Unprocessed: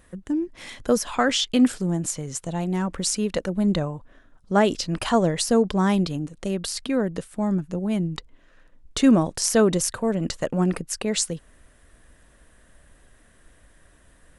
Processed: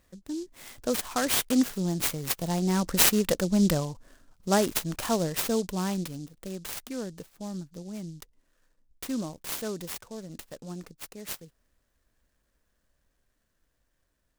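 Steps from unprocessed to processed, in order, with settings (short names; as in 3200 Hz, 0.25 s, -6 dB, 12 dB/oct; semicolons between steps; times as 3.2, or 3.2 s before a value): Doppler pass-by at 3.12, 8 m/s, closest 7.9 m; synth low-pass 6300 Hz, resonance Q 3.3; noise-modulated delay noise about 5500 Hz, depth 0.069 ms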